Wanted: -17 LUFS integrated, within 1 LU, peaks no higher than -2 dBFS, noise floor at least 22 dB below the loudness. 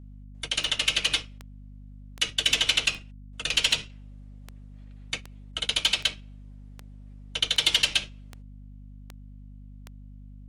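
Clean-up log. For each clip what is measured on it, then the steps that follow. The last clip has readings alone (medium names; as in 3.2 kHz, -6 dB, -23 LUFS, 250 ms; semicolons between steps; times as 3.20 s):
clicks found 13; hum 50 Hz; highest harmonic 250 Hz; hum level -43 dBFS; loudness -25.0 LUFS; peak level -10.5 dBFS; loudness target -17.0 LUFS
-> de-click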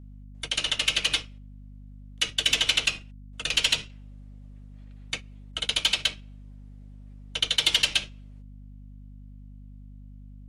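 clicks found 0; hum 50 Hz; highest harmonic 250 Hz; hum level -43 dBFS
-> hum notches 50/100/150/200/250 Hz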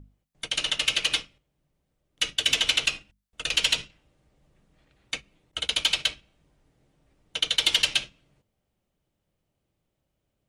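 hum not found; loudness -24.5 LUFS; peak level -10.5 dBFS; loudness target -17.0 LUFS
-> trim +7.5 dB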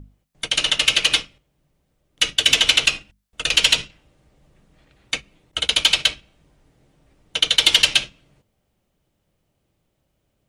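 loudness -17.0 LUFS; peak level -3.0 dBFS; noise floor -72 dBFS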